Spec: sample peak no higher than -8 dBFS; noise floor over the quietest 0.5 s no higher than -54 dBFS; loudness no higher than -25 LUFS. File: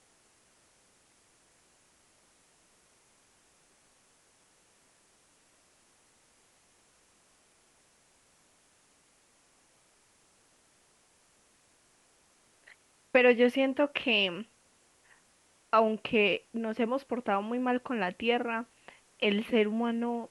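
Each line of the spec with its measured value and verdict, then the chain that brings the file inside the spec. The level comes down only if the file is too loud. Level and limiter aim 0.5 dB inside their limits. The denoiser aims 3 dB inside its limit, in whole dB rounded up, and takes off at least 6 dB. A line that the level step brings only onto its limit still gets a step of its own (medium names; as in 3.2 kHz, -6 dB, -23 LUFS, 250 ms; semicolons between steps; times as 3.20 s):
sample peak -11.0 dBFS: pass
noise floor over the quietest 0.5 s -66 dBFS: pass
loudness -28.5 LUFS: pass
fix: none needed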